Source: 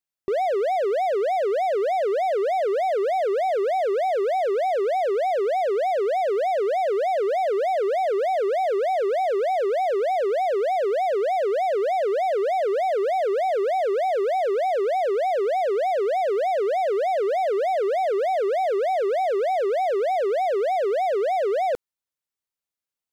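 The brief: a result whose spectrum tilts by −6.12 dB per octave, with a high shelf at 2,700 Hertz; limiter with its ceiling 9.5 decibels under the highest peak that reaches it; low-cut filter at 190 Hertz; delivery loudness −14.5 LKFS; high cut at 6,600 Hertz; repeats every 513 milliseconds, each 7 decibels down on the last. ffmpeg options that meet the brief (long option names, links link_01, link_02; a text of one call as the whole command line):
ffmpeg -i in.wav -af "highpass=190,lowpass=6600,highshelf=frequency=2700:gain=7,alimiter=level_in=3dB:limit=-24dB:level=0:latency=1,volume=-3dB,aecho=1:1:513|1026|1539|2052|2565:0.447|0.201|0.0905|0.0407|0.0183,volume=16dB" out.wav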